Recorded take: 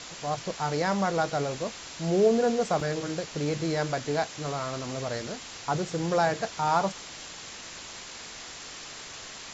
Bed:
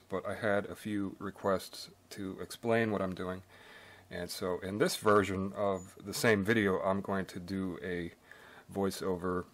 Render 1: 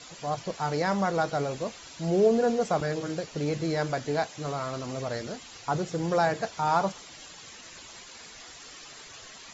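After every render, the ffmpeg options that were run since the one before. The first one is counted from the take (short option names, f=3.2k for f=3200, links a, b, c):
-af "afftdn=nr=10:nf=-43"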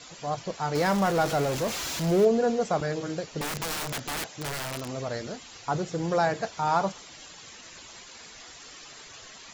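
-filter_complex "[0:a]asettb=1/sr,asplit=3[a][b][c];[a]atrim=end=0.754[d];[b]atrim=start=0.75:end=2.25,asetpts=PTS-STARTPTS,afade=t=in:d=0.004:c=qsin,afade=t=out:st=1.496:d=0.004:c=qsin,aeval=exprs='val(0)+0.5*0.0376*sgn(val(0))':c=same[e];[c]atrim=start=2.246[f];[d][e]acrossfade=d=0.004:c1=hsin:c2=qsin[g];[g][f]acrossfade=d=0.004:c1=qsin:c2=hsin,asettb=1/sr,asplit=3[h][i][j];[h]atrim=end=3.414[k];[i]atrim=start=3.41:end=4.9,asetpts=PTS-STARTPTS,afade=t=in:d=0.004:c=qsin,afade=t=out:st=1.486:d=0.004:c=qsin,aeval=exprs='(mod(22.4*val(0)+1,2)-1)/22.4':c=same[l];[j]atrim=start=4.896[m];[k][l]acrossfade=d=0.004:c1=hsin:c2=qsin[n];[n][m]acrossfade=d=0.004:c1=qsin:c2=hsin"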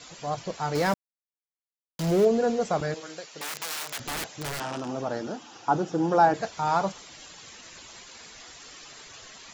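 -filter_complex "[0:a]asettb=1/sr,asplit=3[a][b][c];[a]atrim=end=2.944[d];[b]atrim=start=2.94:end=4,asetpts=PTS-STARTPTS,afade=t=in:d=0.004:c=qsin,afade=t=out:st=1.056:d=0.004:c=qsin,highpass=f=1.1k:p=1[e];[c]atrim=start=3.996[f];[d][e]acrossfade=d=0.004:c1=hsin:c2=qsin[g];[g][f]acrossfade=d=0.004:c1=qsin:c2=hsin,asettb=1/sr,asplit=3[h][i][j];[h]atrim=end=4.604[k];[i]atrim=start=4.6:end=6.34,asetpts=PTS-STARTPTS,afade=t=in:d=0.004:c=qsin,afade=t=out:st=1.736:d=0.004:c=qsin,highpass=140,equalizer=f=220:t=q:w=4:g=4,equalizer=f=310:t=q:w=4:g=9,equalizer=f=830:t=q:w=4:g=9,equalizer=f=1.4k:t=q:w=4:g=4,equalizer=f=2.1k:t=q:w=4:g=-9,equalizer=f=4.2k:t=q:w=4:g=-8,lowpass=f=6.3k:w=0.5412,lowpass=f=6.3k:w=1.3066[l];[j]atrim=start=6.336[m];[k][l]acrossfade=d=0.004:c1=hsin:c2=qsin[n];[n][m]acrossfade=d=0.004:c1=qsin:c2=hsin,asplit=3[o][p][q];[o]atrim=end=0.94,asetpts=PTS-STARTPTS,afade=t=out:st=0.936:d=0.004:c=hsin[r];[p]atrim=start=0.94:end=1.99,asetpts=PTS-STARTPTS,volume=0[s];[q]atrim=start=1.99,asetpts=PTS-STARTPTS,afade=t=in:d=0.004:c=hsin[t];[r][s][t]concat=n=3:v=0:a=1"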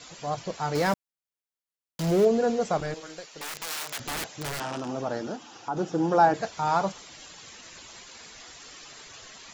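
-filter_complex "[0:a]asettb=1/sr,asplit=3[a][b][c];[a]atrim=end=2.774[d];[b]atrim=start=2.77:end=3.67,asetpts=PTS-STARTPTS,afade=t=in:d=0.004:c=qsin,afade=t=out:st=0.896:d=0.004:c=qsin,aeval=exprs='(tanh(14.1*val(0)+0.4)-tanh(0.4))/14.1':c=same[e];[c]atrim=start=3.666[f];[d][e]acrossfade=d=0.004:c1=hsin:c2=qsin[g];[g][f]acrossfade=d=0.004:c1=qsin:c2=hsin,asettb=1/sr,asplit=3[h][i][j];[h]atrim=end=5.364[k];[i]atrim=start=5.36:end=5.77,asetpts=PTS-STARTPTS,afade=t=in:d=0.004:c=qsin,afade=t=out:st=0.406:d=0.004:c=qsin,acompressor=threshold=-40dB:ratio=1.5:attack=3.2:release=140:knee=1:detection=peak[l];[j]atrim=start=5.766[m];[k][l]acrossfade=d=0.004:c1=hsin:c2=qsin[n];[n][m]acrossfade=d=0.004:c1=qsin:c2=hsin"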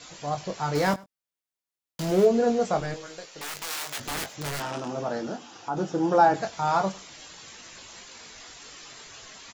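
-filter_complex "[0:a]asplit=2[a][b];[b]adelay=21,volume=-7dB[c];[a][c]amix=inputs=2:normalize=0,aecho=1:1:100:0.0668"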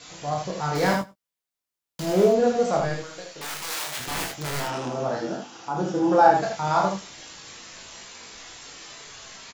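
-filter_complex "[0:a]asplit=2[a][b];[b]adelay=15,volume=-11dB[c];[a][c]amix=inputs=2:normalize=0,aecho=1:1:33|78:0.562|0.631"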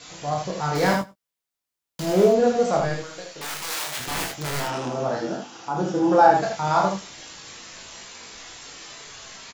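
-af "volume=1.5dB,alimiter=limit=-3dB:level=0:latency=1"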